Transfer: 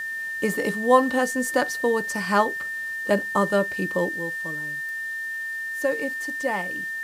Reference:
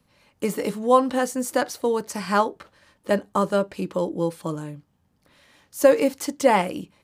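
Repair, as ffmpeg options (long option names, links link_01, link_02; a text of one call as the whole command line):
ffmpeg -i in.wav -af "adeclick=threshold=4,bandreject=frequency=1800:width=30,afwtdn=0.0035,asetnsamples=nb_out_samples=441:pad=0,asendcmd='4.09 volume volume 9.5dB',volume=0dB" out.wav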